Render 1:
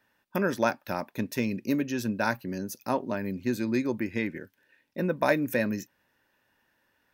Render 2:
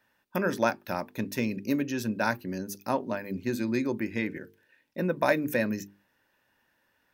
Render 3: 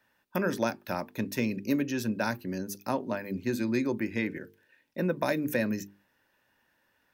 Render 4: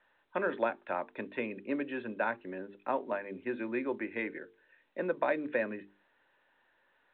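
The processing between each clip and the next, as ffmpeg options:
-af "bandreject=f=50:t=h:w=6,bandreject=f=100:t=h:w=6,bandreject=f=150:t=h:w=6,bandreject=f=200:t=h:w=6,bandreject=f=250:t=h:w=6,bandreject=f=300:t=h:w=6,bandreject=f=350:t=h:w=6,bandreject=f=400:t=h:w=6,bandreject=f=450:t=h:w=6"
-filter_complex "[0:a]acrossover=split=420|3000[a][b][c];[b]acompressor=threshold=-28dB:ratio=6[d];[a][d][c]amix=inputs=3:normalize=0"
-filter_complex "[0:a]acrossover=split=320 2600:gain=0.0891 1 0.2[a][b][c];[a][b][c]amix=inputs=3:normalize=0" -ar 8000 -c:a pcm_mulaw

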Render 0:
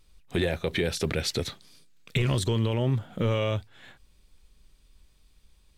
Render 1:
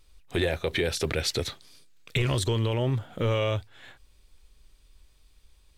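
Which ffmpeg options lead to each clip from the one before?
-af "equalizer=f=190:t=o:w=0.78:g=-8,volume=1.5dB"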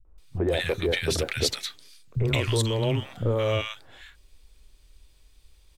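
-filter_complex "[0:a]acrossover=split=180|1200[a][b][c];[b]adelay=50[d];[c]adelay=180[e];[a][d][e]amix=inputs=3:normalize=0,volume=2.5dB"

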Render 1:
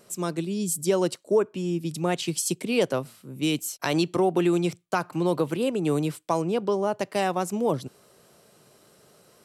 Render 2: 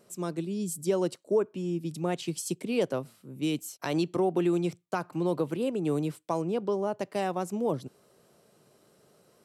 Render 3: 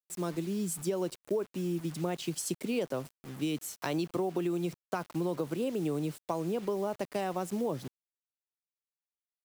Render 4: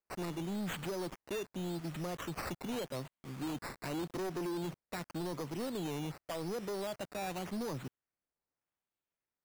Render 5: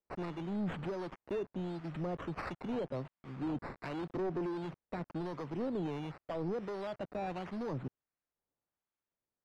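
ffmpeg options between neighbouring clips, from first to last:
-af "equalizer=f=280:w=0.32:g=5,volume=-8.5dB"
-af "acrusher=bits=7:mix=0:aa=0.000001,acompressor=threshold=-28dB:ratio=6"
-af "acrusher=samples=11:mix=1:aa=0.000001:lfo=1:lforange=6.6:lforate=0.87,aphaser=in_gain=1:out_gain=1:delay=1.8:decay=0.21:speed=0.23:type=triangular,asoftclip=type=hard:threshold=-33dB,volume=-2dB"
-filter_complex "[0:a]acrossover=split=870[a][b];[a]aeval=exprs='val(0)*(1-0.5/2+0.5/2*cos(2*PI*1.4*n/s))':c=same[c];[b]aeval=exprs='val(0)*(1-0.5/2-0.5/2*cos(2*PI*1.4*n/s))':c=same[d];[c][d]amix=inputs=2:normalize=0,adynamicsmooth=sensitivity=3:basefreq=2.3k,volume=3.5dB"

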